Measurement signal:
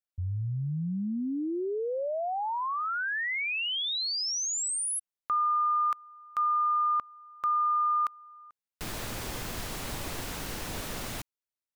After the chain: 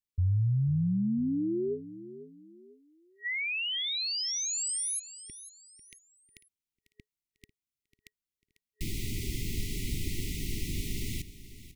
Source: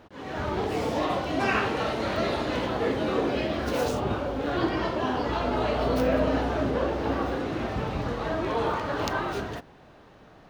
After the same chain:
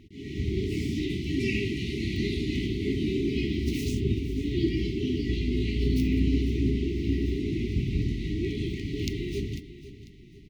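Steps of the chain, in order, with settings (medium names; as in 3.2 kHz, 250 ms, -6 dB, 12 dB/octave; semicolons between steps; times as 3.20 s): feedback delay 496 ms, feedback 35%, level -15 dB; FFT band-reject 430–1900 Hz; bass shelf 200 Hz +9 dB; trim -1.5 dB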